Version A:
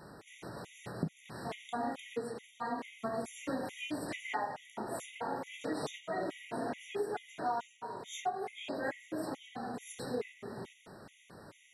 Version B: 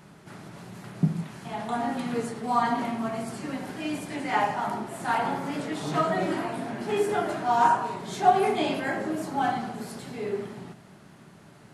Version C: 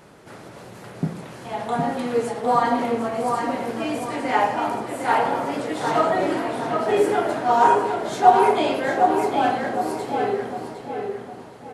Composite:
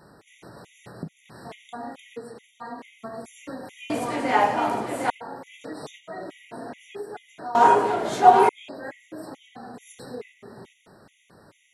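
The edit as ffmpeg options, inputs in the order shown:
-filter_complex "[2:a]asplit=2[a][b];[0:a]asplit=3[c][d][e];[c]atrim=end=3.902[f];[a]atrim=start=3.898:end=5.102[g];[d]atrim=start=5.098:end=7.552[h];[b]atrim=start=7.548:end=8.492[i];[e]atrim=start=8.488[j];[f][g]acrossfade=d=0.004:c1=hsin:c2=hsin[k];[k][h]acrossfade=d=0.004:c1=hsin:c2=hsin[l];[l][i]acrossfade=d=0.004:c1=hsin:c2=hsin[m];[m][j]acrossfade=d=0.004:c1=hsin:c2=hsin"

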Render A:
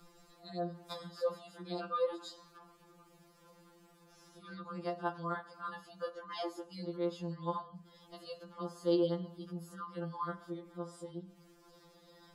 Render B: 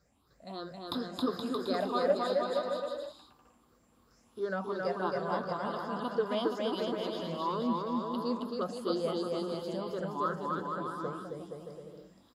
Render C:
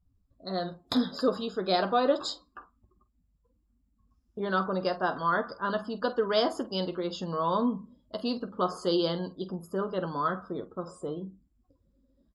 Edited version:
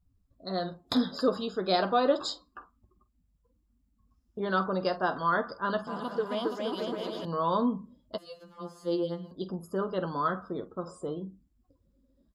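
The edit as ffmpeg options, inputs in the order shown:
-filter_complex "[2:a]asplit=3[a][b][c];[a]atrim=end=5.872[d];[1:a]atrim=start=5.868:end=7.252[e];[b]atrim=start=7.248:end=8.182[f];[0:a]atrim=start=8.178:end=9.312[g];[c]atrim=start=9.308[h];[d][e]acrossfade=d=0.004:c1=hsin:c2=hsin[i];[i][f]acrossfade=d=0.004:c1=hsin:c2=hsin[j];[j][g]acrossfade=d=0.004:c1=hsin:c2=hsin[k];[k][h]acrossfade=d=0.004:c1=hsin:c2=hsin"

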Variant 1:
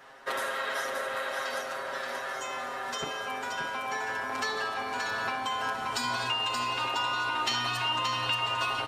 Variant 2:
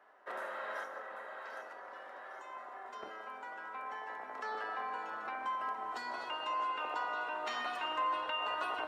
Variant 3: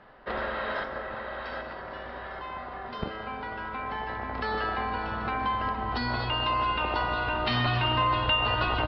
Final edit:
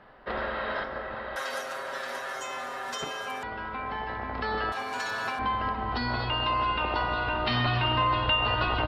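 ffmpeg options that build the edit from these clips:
-filter_complex "[0:a]asplit=2[a][b];[2:a]asplit=3[c][d][e];[c]atrim=end=1.362[f];[a]atrim=start=1.358:end=3.432[g];[d]atrim=start=3.428:end=4.722[h];[b]atrim=start=4.718:end=5.392[i];[e]atrim=start=5.388[j];[f][g]acrossfade=d=0.004:c1=hsin:c2=hsin[k];[k][h]acrossfade=d=0.004:c1=hsin:c2=hsin[l];[l][i]acrossfade=d=0.004:c1=hsin:c2=hsin[m];[m][j]acrossfade=d=0.004:c1=hsin:c2=hsin"

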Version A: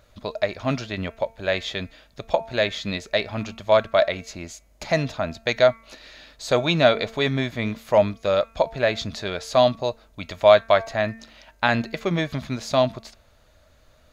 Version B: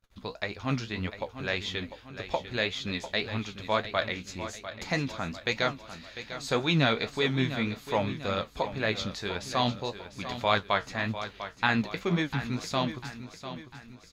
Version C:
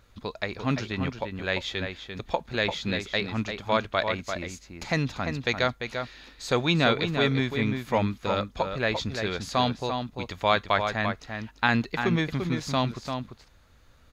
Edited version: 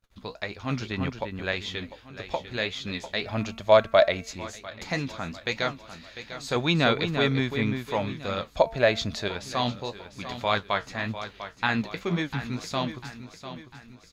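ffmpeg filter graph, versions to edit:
-filter_complex "[2:a]asplit=2[a][b];[0:a]asplit=2[c][d];[1:a]asplit=5[e][f][g][h][i];[e]atrim=end=0.812[j];[a]atrim=start=0.808:end=1.522[k];[f]atrim=start=1.518:end=3.262[l];[c]atrim=start=3.258:end=4.332[m];[g]atrim=start=4.328:end=6.562[n];[b]atrim=start=6.558:end=7.882[o];[h]atrim=start=7.878:end=8.562[p];[d]atrim=start=8.558:end=9.282[q];[i]atrim=start=9.278[r];[j][k]acrossfade=d=0.004:c1=hsin:c2=hsin[s];[s][l]acrossfade=d=0.004:c1=hsin:c2=hsin[t];[t][m]acrossfade=d=0.004:c1=hsin:c2=hsin[u];[u][n]acrossfade=d=0.004:c1=hsin:c2=hsin[v];[v][o]acrossfade=d=0.004:c1=hsin:c2=hsin[w];[w][p]acrossfade=d=0.004:c1=hsin:c2=hsin[x];[x][q]acrossfade=d=0.004:c1=hsin:c2=hsin[y];[y][r]acrossfade=d=0.004:c1=hsin:c2=hsin"

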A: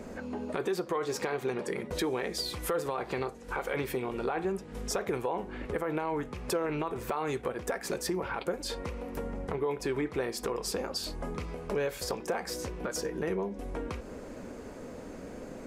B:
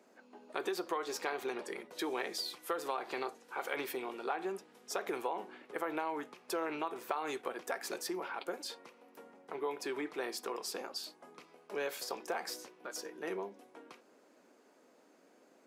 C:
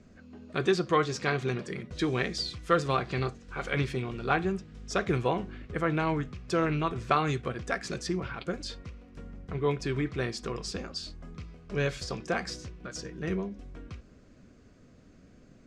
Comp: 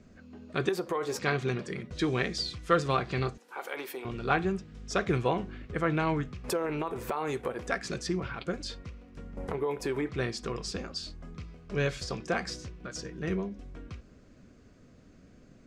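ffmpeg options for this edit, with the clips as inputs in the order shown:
-filter_complex "[0:a]asplit=3[a][b][c];[2:a]asplit=5[d][e][f][g][h];[d]atrim=end=0.692[i];[a]atrim=start=0.688:end=1.192[j];[e]atrim=start=1.188:end=3.382[k];[1:a]atrim=start=3.378:end=4.052[l];[f]atrim=start=4.048:end=6.442[m];[b]atrim=start=6.438:end=7.672[n];[g]atrim=start=7.668:end=9.372[o];[c]atrim=start=9.368:end=10.092[p];[h]atrim=start=10.088[q];[i][j]acrossfade=d=0.004:c1=hsin:c2=hsin[r];[r][k]acrossfade=d=0.004:c1=hsin:c2=hsin[s];[s][l]acrossfade=d=0.004:c1=hsin:c2=hsin[t];[t][m]acrossfade=d=0.004:c1=hsin:c2=hsin[u];[u][n]acrossfade=d=0.004:c1=hsin:c2=hsin[v];[v][o]acrossfade=d=0.004:c1=hsin:c2=hsin[w];[w][p]acrossfade=d=0.004:c1=hsin:c2=hsin[x];[x][q]acrossfade=d=0.004:c1=hsin:c2=hsin"

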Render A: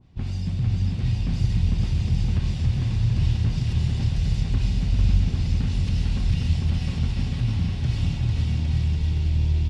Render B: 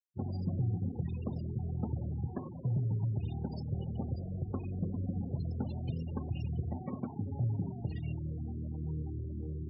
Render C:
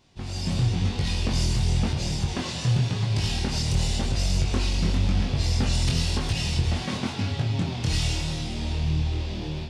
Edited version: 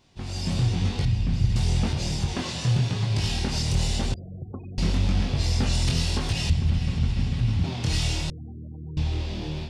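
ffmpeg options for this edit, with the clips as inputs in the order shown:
-filter_complex "[0:a]asplit=2[a][b];[1:a]asplit=2[c][d];[2:a]asplit=5[e][f][g][h][i];[e]atrim=end=1.052[j];[a]atrim=start=1.048:end=1.562[k];[f]atrim=start=1.558:end=4.142[l];[c]atrim=start=4.138:end=4.782[m];[g]atrim=start=4.778:end=6.502[n];[b]atrim=start=6.498:end=7.642[o];[h]atrim=start=7.638:end=8.302[p];[d]atrim=start=8.298:end=8.972[q];[i]atrim=start=8.968[r];[j][k]acrossfade=d=0.004:c1=hsin:c2=hsin[s];[s][l]acrossfade=d=0.004:c1=hsin:c2=hsin[t];[t][m]acrossfade=d=0.004:c1=hsin:c2=hsin[u];[u][n]acrossfade=d=0.004:c1=hsin:c2=hsin[v];[v][o]acrossfade=d=0.004:c1=hsin:c2=hsin[w];[w][p]acrossfade=d=0.004:c1=hsin:c2=hsin[x];[x][q]acrossfade=d=0.004:c1=hsin:c2=hsin[y];[y][r]acrossfade=d=0.004:c1=hsin:c2=hsin"

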